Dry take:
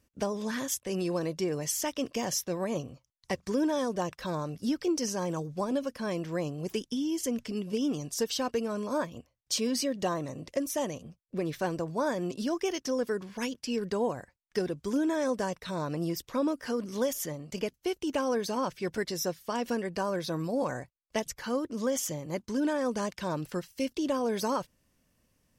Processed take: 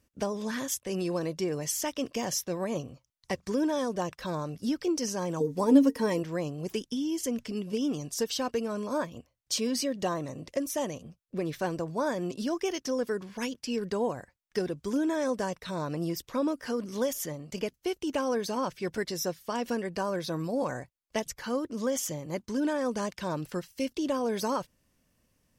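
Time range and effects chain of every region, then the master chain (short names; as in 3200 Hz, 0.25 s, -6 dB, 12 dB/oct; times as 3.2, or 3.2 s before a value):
5.4–6.23 high shelf 7300 Hz +11 dB + small resonant body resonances 280/450/910/1900 Hz, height 16 dB, ringing for 85 ms
whole clip: dry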